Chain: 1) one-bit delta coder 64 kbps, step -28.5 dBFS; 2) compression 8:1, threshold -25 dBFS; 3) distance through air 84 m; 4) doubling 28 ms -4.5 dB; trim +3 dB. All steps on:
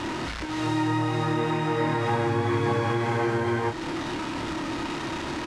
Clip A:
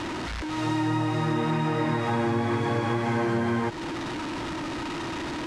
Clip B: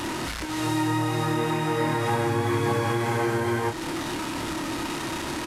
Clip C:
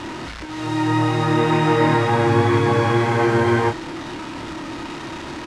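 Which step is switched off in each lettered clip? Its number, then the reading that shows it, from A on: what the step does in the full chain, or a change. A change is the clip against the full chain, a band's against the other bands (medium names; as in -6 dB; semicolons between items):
4, 250 Hz band +2.0 dB; 3, 8 kHz band +7.5 dB; 2, mean gain reduction 4.0 dB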